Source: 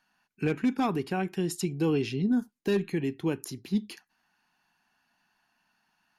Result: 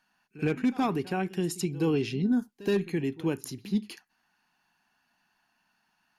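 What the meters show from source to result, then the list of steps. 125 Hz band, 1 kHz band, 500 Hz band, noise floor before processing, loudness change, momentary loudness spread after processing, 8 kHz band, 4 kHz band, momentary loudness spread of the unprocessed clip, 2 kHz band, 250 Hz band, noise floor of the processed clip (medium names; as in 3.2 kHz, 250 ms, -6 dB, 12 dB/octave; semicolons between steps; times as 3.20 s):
0.0 dB, 0.0 dB, 0.0 dB, -77 dBFS, 0.0 dB, 5 LU, 0.0 dB, 0.0 dB, 5 LU, 0.0 dB, 0.0 dB, -74 dBFS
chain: pre-echo 72 ms -18.5 dB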